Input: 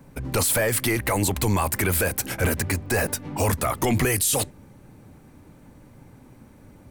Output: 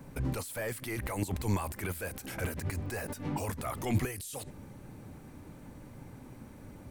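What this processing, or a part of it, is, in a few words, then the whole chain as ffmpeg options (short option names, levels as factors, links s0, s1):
de-esser from a sidechain: -filter_complex "[0:a]asplit=2[s0][s1];[s1]highpass=f=4500:p=1,apad=whole_len=304401[s2];[s0][s2]sidechaincompress=threshold=0.00708:ratio=6:attack=1.6:release=42"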